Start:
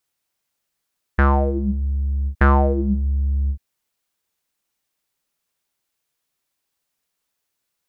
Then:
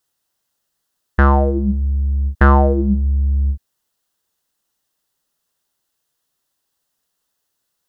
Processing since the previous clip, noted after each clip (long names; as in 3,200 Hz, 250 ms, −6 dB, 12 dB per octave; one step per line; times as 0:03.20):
parametric band 2,300 Hz −13 dB 0.23 octaves
level +4 dB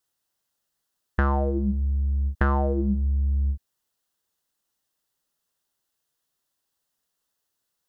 downward compressor 4 to 1, threshold −14 dBFS, peak gain reduction 6.5 dB
level −5.5 dB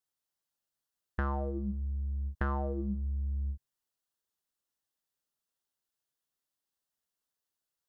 tuned comb filter 130 Hz, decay 0.72 s, mix 40%
level −6 dB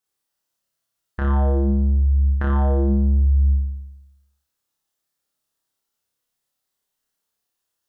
flutter between parallel walls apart 5 metres, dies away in 0.95 s
level +4.5 dB